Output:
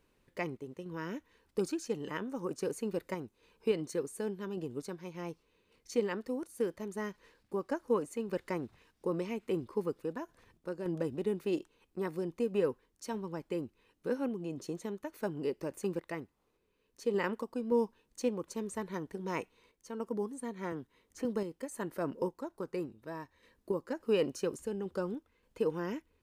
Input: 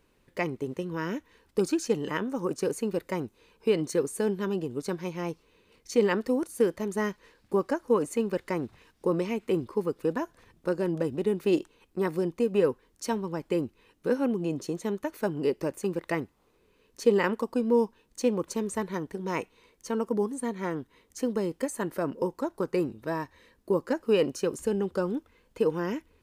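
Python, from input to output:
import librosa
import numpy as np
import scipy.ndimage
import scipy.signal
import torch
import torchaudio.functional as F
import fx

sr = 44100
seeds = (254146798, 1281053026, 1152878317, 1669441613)

y = fx.tremolo_random(x, sr, seeds[0], hz=3.5, depth_pct=55)
y = fx.band_squash(y, sr, depth_pct=40, at=(20.72, 21.25))
y = y * 10.0 ** (-5.0 / 20.0)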